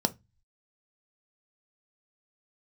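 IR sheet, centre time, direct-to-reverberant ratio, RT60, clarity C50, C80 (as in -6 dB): 3 ms, 9.0 dB, 0.20 s, 22.5 dB, 33.5 dB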